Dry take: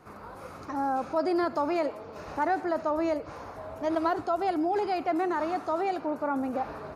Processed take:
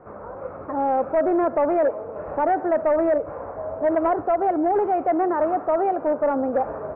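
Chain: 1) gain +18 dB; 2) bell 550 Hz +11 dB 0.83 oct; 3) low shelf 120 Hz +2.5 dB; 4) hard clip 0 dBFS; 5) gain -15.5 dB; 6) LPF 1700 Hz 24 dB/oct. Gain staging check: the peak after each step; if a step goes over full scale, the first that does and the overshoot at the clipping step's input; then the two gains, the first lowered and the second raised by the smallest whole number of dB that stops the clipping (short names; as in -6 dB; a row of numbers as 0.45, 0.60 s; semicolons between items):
+0.5, +7.5, +7.5, 0.0, -15.5, -14.0 dBFS; step 1, 7.5 dB; step 1 +10 dB, step 5 -7.5 dB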